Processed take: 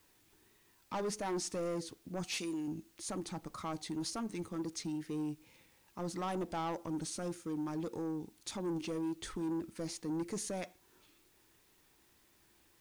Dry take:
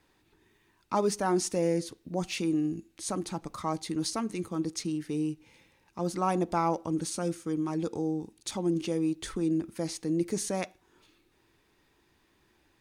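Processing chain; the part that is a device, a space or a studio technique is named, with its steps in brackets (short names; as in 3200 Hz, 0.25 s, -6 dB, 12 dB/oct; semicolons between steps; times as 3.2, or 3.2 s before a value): 2.24–2.68 tilt +2.5 dB/oct; compact cassette (soft clip -27.5 dBFS, distortion -11 dB; LPF 11000 Hz; wow and flutter; white noise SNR 30 dB); gain -4.5 dB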